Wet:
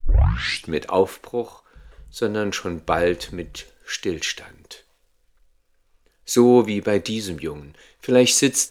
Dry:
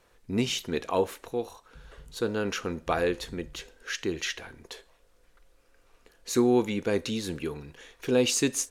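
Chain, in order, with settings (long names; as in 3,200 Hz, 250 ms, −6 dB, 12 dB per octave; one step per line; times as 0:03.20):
turntable start at the beginning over 0.75 s
surface crackle 280 per second −57 dBFS
multiband upward and downward expander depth 40%
level +6 dB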